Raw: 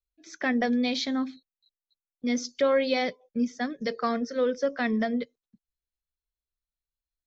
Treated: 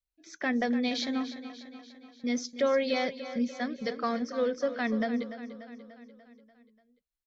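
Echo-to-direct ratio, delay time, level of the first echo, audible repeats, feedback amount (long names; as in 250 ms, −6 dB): −11.0 dB, 293 ms, −12.5 dB, 5, 57%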